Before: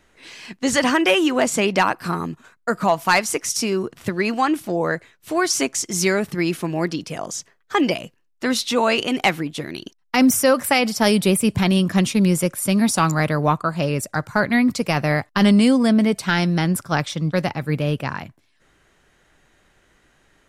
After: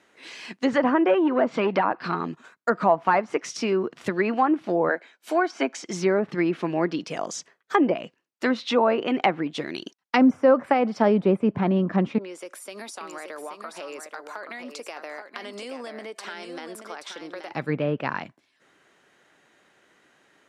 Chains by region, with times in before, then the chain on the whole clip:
0:01.11–0:02.28: high shelf with overshoot 6,100 Hz −8.5 dB, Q 1.5 + saturating transformer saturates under 690 Hz
0:04.89–0:05.84: Butterworth high-pass 220 Hz 48 dB per octave + comb filter 1.3 ms, depth 34%
0:12.18–0:17.52: high-pass filter 340 Hz 24 dB per octave + downward compressor 8 to 1, threshold −33 dBFS + single-tap delay 828 ms −7 dB
whole clip: treble cut that deepens with the level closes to 1,100 Hz, closed at −15 dBFS; high-pass filter 230 Hz 12 dB per octave; high-shelf EQ 7,600 Hz −7.5 dB

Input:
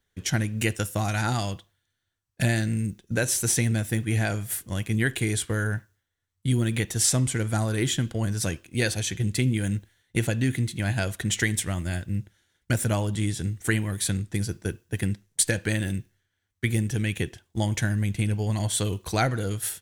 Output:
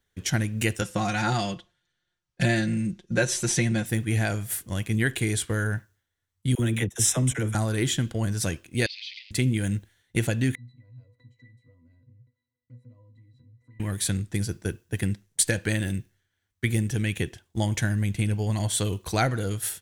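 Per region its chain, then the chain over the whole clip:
0:00.81–0:03.86: low-pass filter 6,400 Hz + comb filter 5.6 ms, depth 79%
0:06.55–0:07.55: noise gate −31 dBFS, range −19 dB + Butterworth band-reject 4,500 Hz, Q 3.8 + all-pass dispersion lows, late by 41 ms, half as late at 530 Hz
0:08.86–0:09.31: spike at every zero crossing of −20 dBFS + Chebyshev band-pass filter 2,100–4,900 Hz, order 4 + downward compressor 2.5 to 1, threshold −36 dBFS
0:10.55–0:13.80: dynamic equaliser 1,200 Hz, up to −5 dB, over −39 dBFS, Q 0.78 + downward compressor 4 to 1, threshold −41 dBFS + resonances in every octave B, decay 0.21 s
whole clip: no processing

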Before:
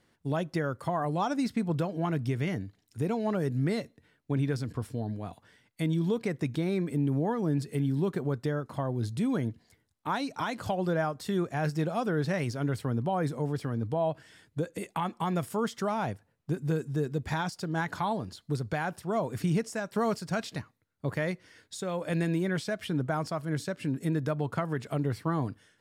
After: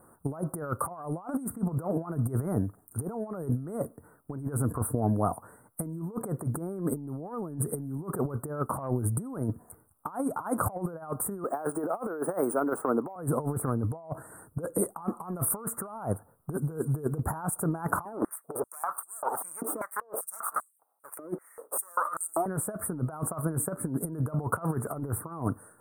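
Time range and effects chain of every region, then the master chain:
0:11.44–0:13.16: high-pass filter 270 Hz 24 dB per octave + linearly interpolated sample-rate reduction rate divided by 3×
0:18.05–0:22.46: lower of the sound and its delayed copy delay 0.33 ms + high-shelf EQ 5,700 Hz −4.5 dB + high-pass on a step sequencer 5.1 Hz 310–7,800 Hz
whole clip: Chebyshev band-stop filter 1,300–9,100 Hz, order 4; tilt shelving filter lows −6 dB, about 790 Hz; compressor whose output falls as the input rises −39 dBFS, ratio −0.5; level +9 dB

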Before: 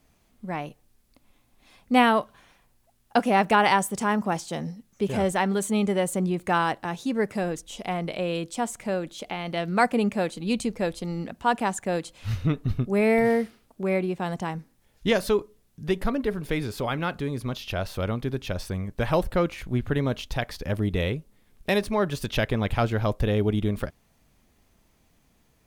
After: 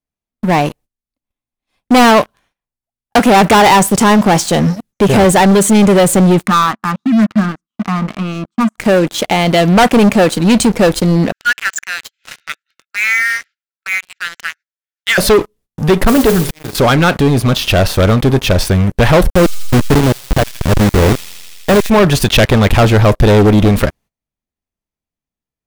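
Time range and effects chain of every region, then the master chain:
0:06.47–0:08.78: pair of resonant band-passes 510 Hz, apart 2.5 octaves + leveller curve on the samples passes 1
0:11.32–0:15.18: linear-phase brick-wall band-pass 1,300–7,800 Hz + spectral tilt −2.5 dB per octave
0:16.07–0:16.75: hum removal 51 Hz, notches 11 + volume swells 732 ms + noise that follows the level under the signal 15 dB
0:19.30–0:21.90: hold until the input has moved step −23.5 dBFS + delay with a high-pass on its return 82 ms, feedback 77%, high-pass 3,900 Hz, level −16.5 dB
whole clip: de-essing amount 55%; noise gate −54 dBFS, range −19 dB; leveller curve on the samples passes 5; level +3.5 dB

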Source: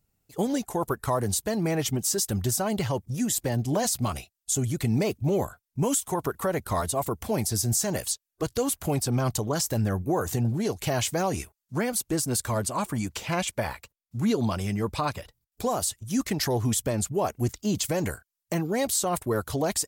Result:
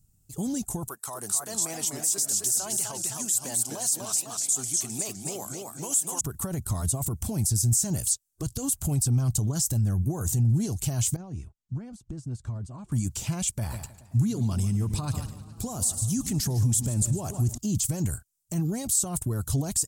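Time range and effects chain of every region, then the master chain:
0:00.88–0:06.21: high-pass filter 610 Hz + feedback echo with a swinging delay time 254 ms, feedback 49%, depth 208 cents, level −5 dB
0:11.16–0:12.92: downward compressor, threshold −38 dBFS + head-to-tape spacing loss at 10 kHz 27 dB
0:13.56–0:17.58: single-tap delay 147 ms −14 dB + feedback echo with a swinging delay time 105 ms, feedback 79%, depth 147 cents, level −23 dB
whole clip: low-shelf EQ 77 Hz +9 dB; brickwall limiter −24.5 dBFS; octave-band graphic EQ 125/500/1,000/2,000/4,000/8,000 Hz +6/−10/−5/−11/−4/+9 dB; level +4 dB

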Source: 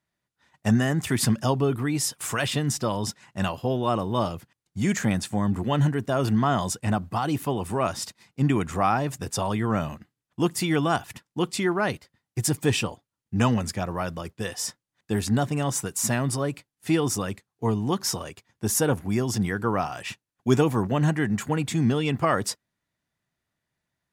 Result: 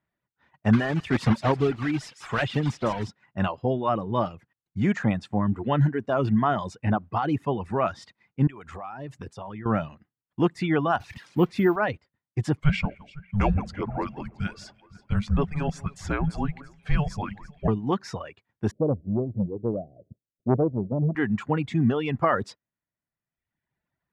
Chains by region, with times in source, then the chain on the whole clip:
0:00.73–0:03.08: one scale factor per block 3 bits + delay with a high-pass on its return 157 ms, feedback 41%, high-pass 3,100 Hz, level −3.5 dB
0:08.47–0:09.66: high-shelf EQ 6,900 Hz +10 dB + downward compressor 12 to 1, threshold −32 dBFS
0:11.00–0:11.76: spike at every zero crossing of −21 dBFS + spectral tilt −2 dB per octave + bad sample-rate conversion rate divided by 3×, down filtered, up zero stuff
0:12.60–0:17.68: mains-hum notches 60/120/180/240 Hz + frequency shifter −300 Hz + delay that swaps between a low-pass and a high-pass 167 ms, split 2,300 Hz, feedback 65%, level −11 dB
0:18.71–0:21.15: de-essing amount 90% + Butterworth low-pass 640 Hz 96 dB per octave + saturating transformer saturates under 430 Hz
whole clip: reverb reduction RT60 1.1 s; low-pass filter 2,300 Hz 12 dB per octave; level +1.5 dB

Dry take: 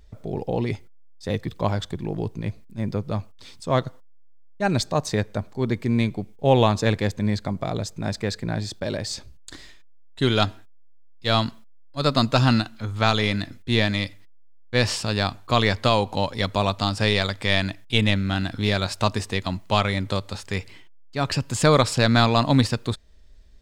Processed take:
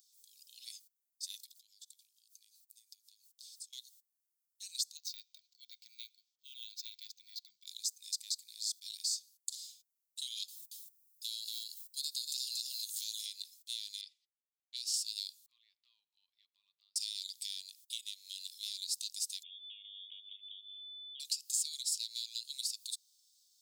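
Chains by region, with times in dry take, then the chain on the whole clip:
0:01.46–0:03.73: high-pass filter 1,500 Hz 6 dB per octave + downward compressor 8 to 1, threshold −49 dBFS
0:04.97–0:07.67: high-frequency loss of the air 190 metres + linearly interpolated sample-rate reduction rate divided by 2×
0:10.48–0:13.26: spectral tilt +4 dB per octave + downward compressor 2 to 1, threshold −37 dBFS + single-tap delay 232 ms −4 dB
0:14.01–0:14.94: low-pass that shuts in the quiet parts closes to 930 Hz, open at −19 dBFS + multiband upward and downward compressor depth 70%
0:15.46–0:16.96: transistor ladder low-pass 1,500 Hz, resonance 40% + downward compressor 2 to 1, threshold −31 dBFS
0:19.43–0:21.20: downward compressor 10 to 1, threshold −38 dBFS + voice inversion scrambler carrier 3,500 Hz
whole clip: first difference; downward compressor 4 to 1, threshold −39 dBFS; inverse Chebyshev high-pass filter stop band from 1,600 Hz, stop band 50 dB; level +6.5 dB

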